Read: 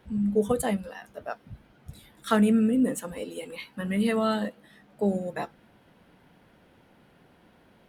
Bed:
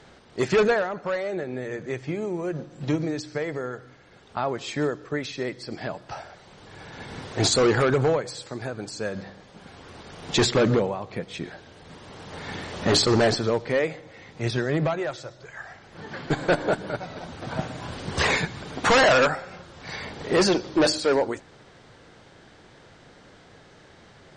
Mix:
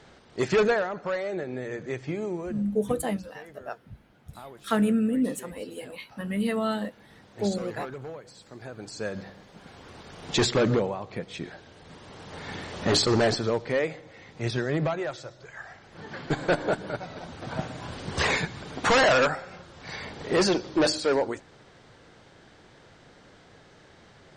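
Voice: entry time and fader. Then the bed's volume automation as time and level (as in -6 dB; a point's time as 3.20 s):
2.40 s, -2.0 dB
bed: 2.33 s -2 dB
2.86 s -17.5 dB
8.14 s -17.5 dB
9.02 s -2.5 dB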